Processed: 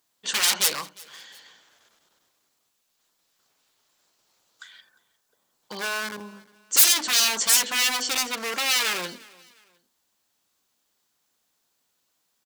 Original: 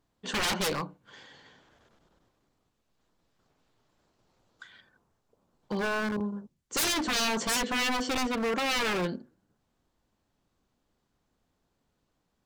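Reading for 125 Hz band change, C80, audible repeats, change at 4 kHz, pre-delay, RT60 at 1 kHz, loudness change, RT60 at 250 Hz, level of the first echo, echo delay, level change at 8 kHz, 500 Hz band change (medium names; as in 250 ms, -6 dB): under -10 dB, no reverb, 2, +8.5 dB, no reverb, no reverb, +8.0 dB, no reverb, -23.5 dB, 354 ms, +13.0 dB, -4.5 dB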